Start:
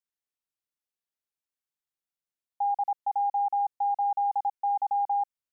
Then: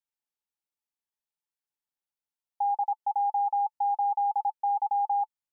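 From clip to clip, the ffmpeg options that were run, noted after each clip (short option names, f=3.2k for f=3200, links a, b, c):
-af "equalizer=f=870:w=7.8:g=10.5,volume=-4.5dB"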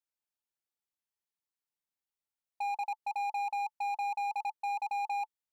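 -af "volume=28.5dB,asoftclip=hard,volume=-28.5dB,volume=-3dB"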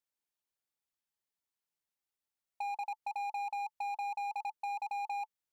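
-af "acompressor=threshold=-36dB:ratio=6"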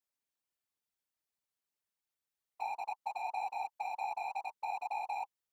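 -af "afftfilt=real='hypot(re,im)*cos(2*PI*random(0))':imag='hypot(re,im)*sin(2*PI*random(1))':win_size=512:overlap=0.75,volume=5dB"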